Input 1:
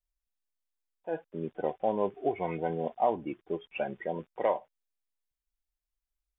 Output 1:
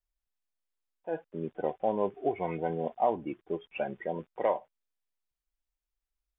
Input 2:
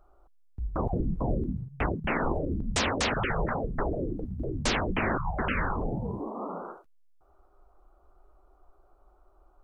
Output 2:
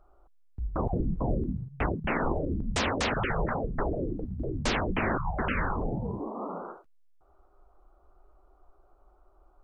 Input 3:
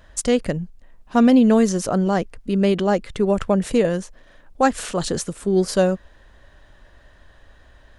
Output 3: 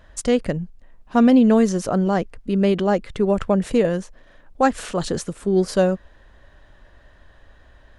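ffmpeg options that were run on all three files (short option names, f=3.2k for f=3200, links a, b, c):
-af "highshelf=f=4.4k:g=-6"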